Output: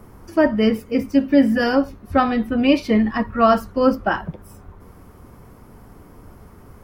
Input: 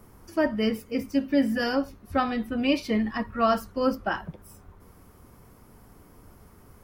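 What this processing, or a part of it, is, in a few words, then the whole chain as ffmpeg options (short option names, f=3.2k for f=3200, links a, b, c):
behind a face mask: -af "highshelf=f=2.9k:g=-7.5,volume=8.5dB"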